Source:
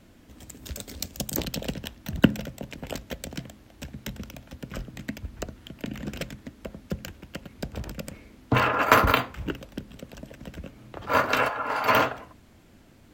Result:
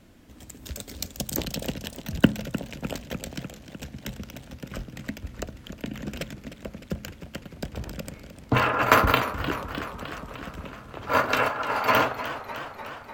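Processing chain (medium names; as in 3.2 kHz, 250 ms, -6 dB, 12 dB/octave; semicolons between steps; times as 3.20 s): modulated delay 302 ms, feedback 71%, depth 113 cents, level -12.5 dB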